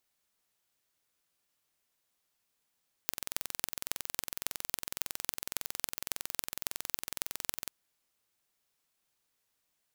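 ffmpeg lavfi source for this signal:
-f lavfi -i "aevalsrc='0.75*eq(mod(n,2023),0)*(0.5+0.5*eq(mod(n,12138),0))':d=4.61:s=44100"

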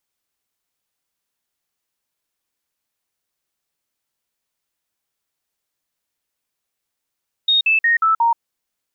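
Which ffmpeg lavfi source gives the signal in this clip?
-f lavfi -i "aevalsrc='0.251*clip(min(mod(t,0.18),0.13-mod(t,0.18))/0.005,0,1)*sin(2*PI*3720*pow(2,-floor(t/0.18)/2)*mod(t,0.18))':d=0.9:s=44100"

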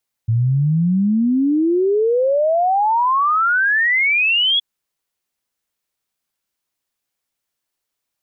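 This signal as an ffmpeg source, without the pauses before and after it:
-f lavfi -i "aevalsrc='0.224*clip(min(t,4.32-t)/0.01,0,1)*sin(2*PI*110*4.32/log(3400/110)*(exp(log(3400/110)*t/4.32)-1))':d=4.32:s=44100"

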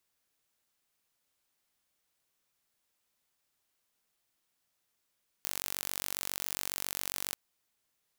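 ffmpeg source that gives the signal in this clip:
-f lavfi -i "aevalsrc='0.398*eq(mod(n,932),0)':d=1.9:s=44100"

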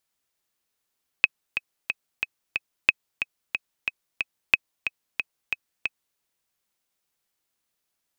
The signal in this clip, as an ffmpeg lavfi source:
-f lavfi -i "aevalsrc='pow(10,(-2-9.5*gte(mod(t,5*60/182),60/182))/20)*sin(2*PI*2550*mod(t,60/182))*exp(-6.91*mod(t,60/182)/0.03)':d=4.94:s=44100"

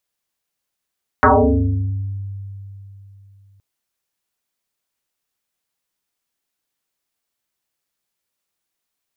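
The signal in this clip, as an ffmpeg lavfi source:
-f lavfi -i "aevalsrc='0.447*pow(10,-3*t/3.36)*sin(2*PI*98.7*t+9.5*pow(10,-3*t/1.24)*sin(2*PI*1.74*98.7*t))':d=2.37:s=44100"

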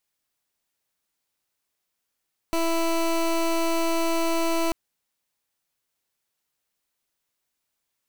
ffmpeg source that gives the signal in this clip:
-f lavfi -i "aevalsrc='0.0708*(2*lt(mod(331*t,1),0.19)-1)':d=2.19:s=44100"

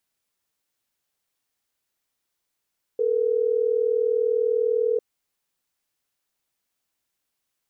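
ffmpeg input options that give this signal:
-f lavfi -i "aevalsrc='0.0794*(sin(2*PI*440*t)+sin(2*PI*480*t))*clip(min(mod(t,6),2-mod(t,6))/0.005,0,1)':d=3.12:s=44100"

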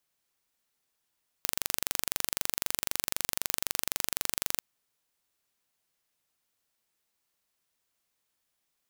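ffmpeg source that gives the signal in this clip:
-f lavfi -i "aevalsrc='0.891*eq(mod(n,1845),0)':d=3.17:s=44100"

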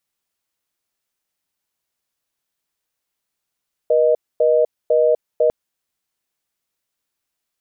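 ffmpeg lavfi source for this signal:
-f lavfi -i "aevalsrc='0.188*(sin(2*PI*480*t)+sin(2*PI*620*t))*clip(min(mod(t,0.5),0.25-mod(t,0.5))/0.005,0,1)':d=1.6:s=44100"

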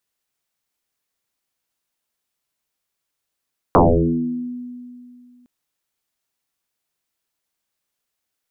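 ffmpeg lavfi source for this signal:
-f lavfi -i "aevalsrc='0.422*pow(10,-3*t/2.45)*sin(2*PI*246*t+12*pow(10,-3*t/1.02)*sin(2*PI*0.35*246*t))':d=1.71:s=44100"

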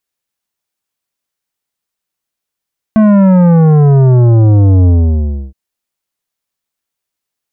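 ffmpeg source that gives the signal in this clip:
-f lavfi -i "aevalsrc='0.562*clip((2.57-t)/0.66,0,1)*tanh(3.76*sin(2*PI*220*2.57/log(65/220)*(exp(log(65/220)*t/2.57)-1)))/tanh(3.76)':d=2.57:s=44100"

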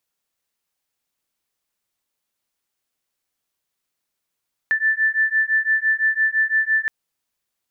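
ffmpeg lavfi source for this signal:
-f lavfi -i "aevalsrc='0.106*(sin(2*PI*1760*t)+sin(2*PI*1765.9*t))':d=2.17:s=44100"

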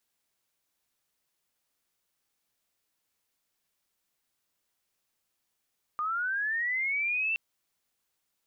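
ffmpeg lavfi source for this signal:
-f lavfi -i "aevalsrc='pow(10,(-28+2*t/1.37)/20)*sin(2*PI*(1200*t+1500*t*t/(2*1.37)))':d=1.37:s=44100"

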